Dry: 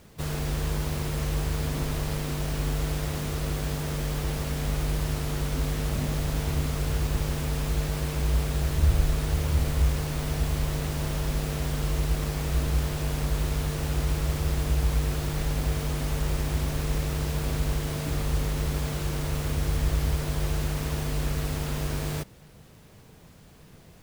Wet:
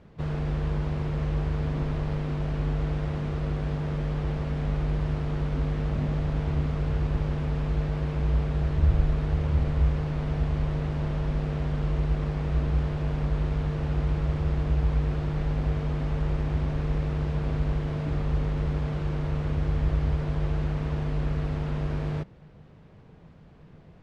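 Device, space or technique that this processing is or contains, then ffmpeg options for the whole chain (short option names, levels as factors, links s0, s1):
phone in a pocket: -af "lowpass=3700,equalizer=f=160:t=o:w=0.25:g=4,highshelf=f=2300:g=-10.5"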